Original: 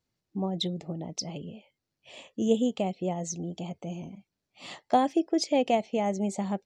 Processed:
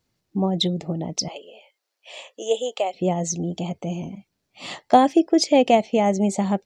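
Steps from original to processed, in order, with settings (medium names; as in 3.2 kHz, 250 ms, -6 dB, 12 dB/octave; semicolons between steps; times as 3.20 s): 1.28–2.94 s: high-pass 490 Hz 24 dB/octave; trim +8.5 dB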